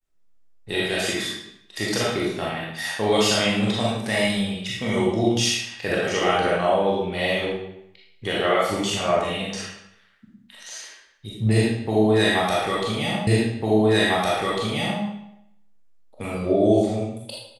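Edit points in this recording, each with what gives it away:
13.27 s: repeat of the last 1.75 s

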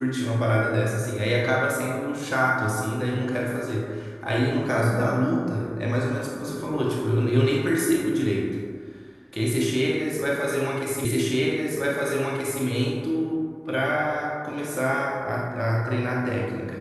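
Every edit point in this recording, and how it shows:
11.05 s: repeat of the last 1.58 s

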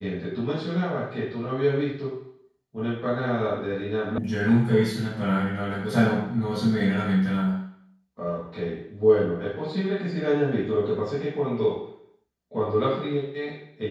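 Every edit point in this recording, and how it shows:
4.18 s: sound stops dead

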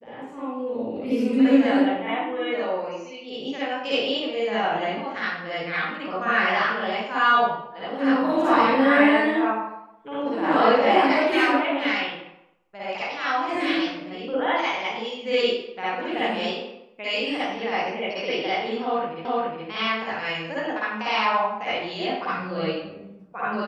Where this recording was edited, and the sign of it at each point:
19.25 s: repeat of the last 0.42 s

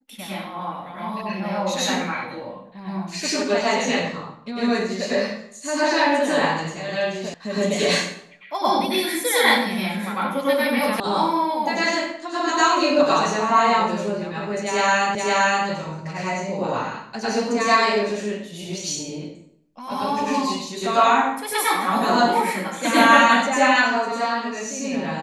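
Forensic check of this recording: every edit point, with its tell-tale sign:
7.34 s: sound stops dead
11.00 s: sound stops dead
15.15 s: repeat of the last 0.52 s

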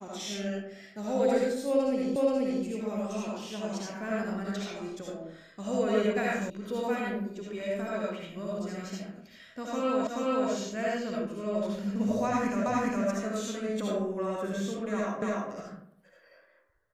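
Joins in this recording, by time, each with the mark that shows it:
2.16 s: repeat of the last 0.48 s
6.50 s: sound stops dead
10.07 s: repeat of the last 0.43 s
12.66 s: repeat of the last 0.41 s
15.22 s: repeat of the last 0.29 s

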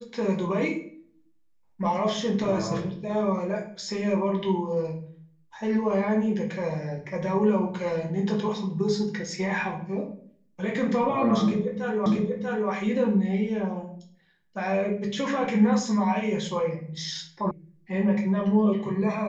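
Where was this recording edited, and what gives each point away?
12.06 s: repeat of the last 0.64 s
17.51 s: sound stops dead

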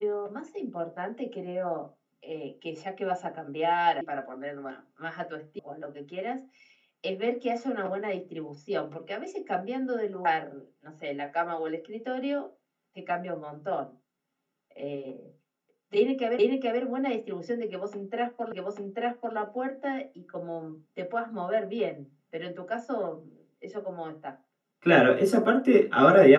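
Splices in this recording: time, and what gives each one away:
4.01 s: sound stops dead
5.59 s: sound stops dead
16.39 s: repeat of the last 0.43 s
18.52 s: repeat of the last 0.84 s

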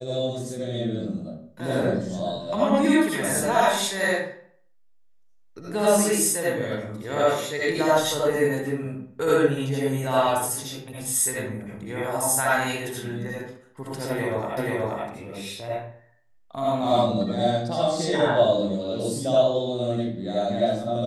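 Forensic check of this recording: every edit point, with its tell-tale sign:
14.57 s: repeat of the last 0.48 s

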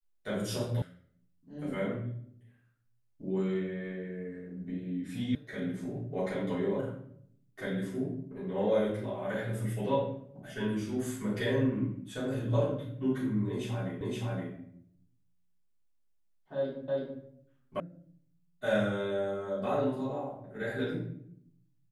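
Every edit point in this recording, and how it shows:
0.82 s: sound stops dead
5.35 s: sound stops dead
14.01 s: repeat of the last 0.52 s
16.88 s: repeat of the last 0.33 s
17.80 s: sound stops dead

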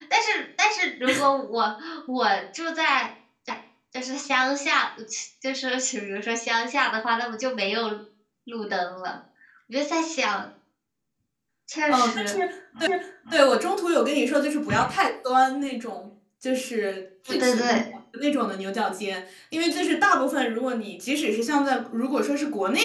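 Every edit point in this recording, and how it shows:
3.50 s: repeat of the last 0.47 s
12.87 s: repeat of the last 0.51 s

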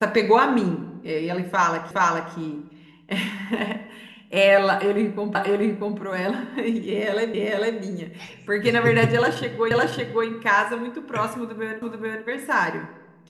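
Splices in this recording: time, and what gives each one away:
1.91 s: repeat of the last 0.42 s
5.35 s: repeat of the last 0.64 s
7.34 s: repeat of the last 0.45 s
9.71 s: repeat of the last 0.56 s
11.82 s: repeat of the last 0.43 s

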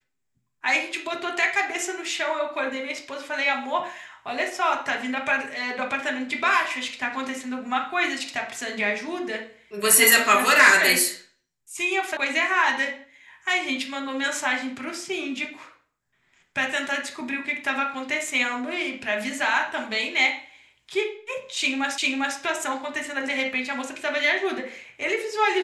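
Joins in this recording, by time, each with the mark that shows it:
12.17 s: sound stops dead
21.98 s: repeat of the last 0.4 s

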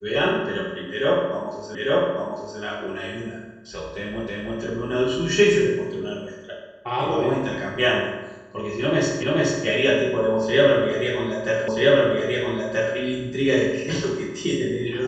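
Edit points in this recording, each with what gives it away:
1.75 s: repeat of the last 0.85 s
4.27 s: repeat of the last 0.32 s
9.23 s: repeat of the last 0.43 s
11.68 s: repeat of the last 1.28 s

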